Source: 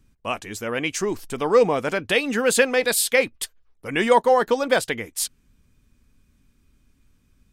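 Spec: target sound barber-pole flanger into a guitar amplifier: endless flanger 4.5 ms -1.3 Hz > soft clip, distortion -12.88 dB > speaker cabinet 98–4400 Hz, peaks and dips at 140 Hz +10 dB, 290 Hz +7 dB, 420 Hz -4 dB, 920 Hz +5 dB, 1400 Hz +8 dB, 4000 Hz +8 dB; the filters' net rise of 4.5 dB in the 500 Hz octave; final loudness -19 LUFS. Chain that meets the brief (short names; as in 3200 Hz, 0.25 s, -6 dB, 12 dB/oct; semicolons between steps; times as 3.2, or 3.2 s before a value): bell 500 Hz +5.5 dB; endless flanger 4.5 ms -1.3 Hz; soft clip -12.5 dBFS; speaker cabinet 98–4400 Hz, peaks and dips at 140 Hz +10 dB, 290 Hz +7 dB, 420 Hz -4 dB, 920 Hz +5 dB, 1400 Hz +8 dB, 4000 Hz +8 dB; gain +3.5 dB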